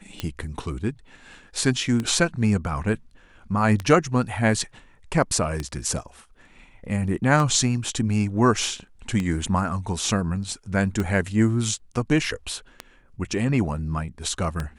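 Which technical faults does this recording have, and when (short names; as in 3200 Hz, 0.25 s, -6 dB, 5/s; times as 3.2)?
tick 33 1/3 rpm -13 dBFS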